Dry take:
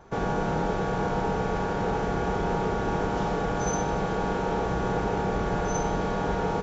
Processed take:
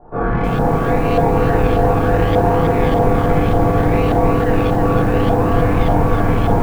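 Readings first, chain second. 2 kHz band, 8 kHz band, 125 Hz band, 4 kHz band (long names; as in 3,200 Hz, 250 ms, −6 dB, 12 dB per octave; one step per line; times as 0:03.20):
+8.5 dB, can't be measured, +14.5 dB, +7.0 dB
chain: high-frequency loss of the air 250 metres
on a send: delay with a low-pass on its return 240 ms, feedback 80%, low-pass 1,000 Hz, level −4.5 dB
on the sum: reverb reduction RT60 1.8 s
high-shelf EQ 2,100 Hz −4.5 dB
rectangular room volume 190 cubic metres, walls mixed, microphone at 3.2 metres
in parallel at −8 dB: sample-and-hold swept by an LFO 37×, swing 60% 0.67 Hz
on the sum: auto-filter low-pass saw up 1.7 Hz 730–3,400 Hz
feedback echo at a low word length 318 ms, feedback 55%, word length 6 bits, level −5 dB
level −2.5 dB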